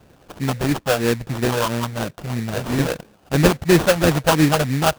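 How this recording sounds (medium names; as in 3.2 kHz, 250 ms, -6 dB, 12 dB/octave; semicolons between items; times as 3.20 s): phasing stages 6, 3 Hz, lowest notch 280–1100 Hz; aliases and images of a low sample rate 2.1 kHz, jitter 20%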